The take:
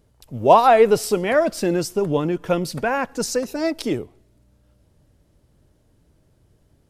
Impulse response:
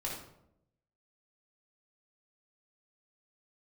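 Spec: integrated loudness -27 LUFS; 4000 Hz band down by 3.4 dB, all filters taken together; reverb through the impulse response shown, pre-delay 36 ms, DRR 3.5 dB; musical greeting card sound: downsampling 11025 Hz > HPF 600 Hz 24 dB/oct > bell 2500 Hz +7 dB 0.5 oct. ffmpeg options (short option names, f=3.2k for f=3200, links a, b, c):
-filter_complex "[0:a]equalizer=f=4k:t=o:g=-7,asplit=2[a][b];[1:a]atrim=start_sample=2205,adelay=36[c];[b][c]afir=irnorm=-1:irlink=0,volume=-6dB[d];[a][d]amix=inputs=2:normalize=0,aresample=11025,aresample=44100,highpass=f=600:w=0.5412,highpass=f=600:w=1.3066,equalizer=f=2.5k:t=o:w=0.5:g=7,volume=-6.5dB"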